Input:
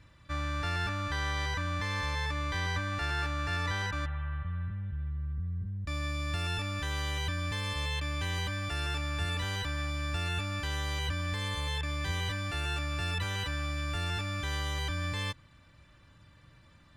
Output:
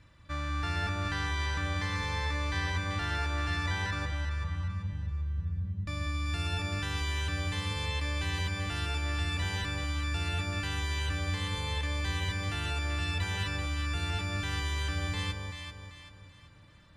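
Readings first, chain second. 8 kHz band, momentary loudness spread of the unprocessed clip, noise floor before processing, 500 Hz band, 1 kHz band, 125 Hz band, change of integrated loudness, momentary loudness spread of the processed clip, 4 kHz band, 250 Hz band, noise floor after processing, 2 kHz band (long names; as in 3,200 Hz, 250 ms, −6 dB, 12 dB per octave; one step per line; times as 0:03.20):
+0.5 dB, 4 LU, −59 dBFS, −0.5 dB, −0.5 dB, +1.0 dB, +0.5 dB, 4 LU, 0.0 dB, +1.5 dB, −54 dBFS, +0.5 dB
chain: low-pass filter 12,000 Hz 12 dB per octave
on a send: delay that swaps between a low-pass and a high-pass 193 ms, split 930 Hz, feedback 63%, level −3 dB
on the sum: level −1 dB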